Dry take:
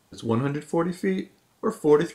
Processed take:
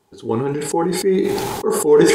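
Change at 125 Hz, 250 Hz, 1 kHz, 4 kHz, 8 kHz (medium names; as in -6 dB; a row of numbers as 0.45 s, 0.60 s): +3.5 dB, +6.5 dB, +8.0 dB, +14.5 dB, +20.0 dB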